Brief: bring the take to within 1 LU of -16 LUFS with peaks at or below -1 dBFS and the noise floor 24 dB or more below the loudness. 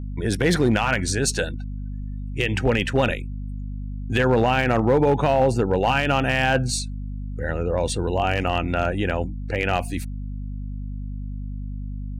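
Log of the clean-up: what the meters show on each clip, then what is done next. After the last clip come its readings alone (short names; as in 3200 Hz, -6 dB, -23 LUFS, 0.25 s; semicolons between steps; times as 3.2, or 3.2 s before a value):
clipped 0.4%; flat tops at -11.5 dBFS; hum 50 Hz; harmonics up to 250 Hz; hum level -28 dBFS; loudness -22.0 LUFS; peak -11.5 dBFS; loudness target -16.0 LUFS
-> clip repair -11.5 dBFS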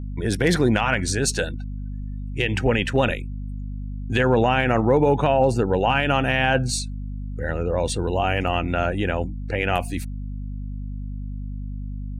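clipped 0.0%; hum 50 Hz; harmonics up to 250 Hz; hum level -28 dBFS
-> de-hum 50 Hz, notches 5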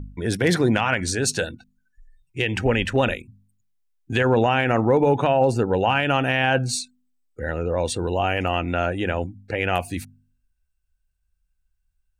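hum none; loudness -22.0 LUFS; peak -6.0 dBFS; loudness target -16.0 LUFS
-> gain +6 dB; limiter -1 dBFS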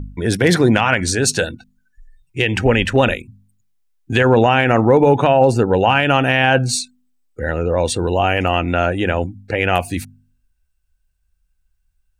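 loudness -16.0 LUFS; peak -1.0 dBFS; noise floor -66 dBFS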